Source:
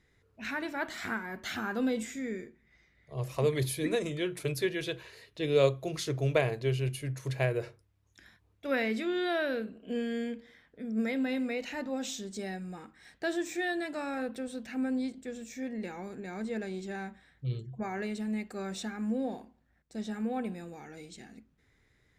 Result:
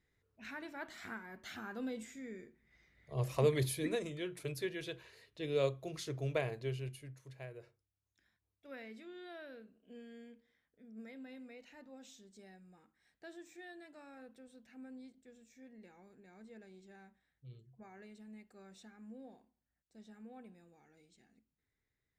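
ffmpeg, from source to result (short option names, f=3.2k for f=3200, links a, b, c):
-af "volume=-0.5dB,afade=t=in:st=2.35:d=0.86:silence=0.298538,afade=t=out:st=3.21:d=0.9:silence=0.398107,afade=t=out:st=6.62:d=0.62:silence=0.281838"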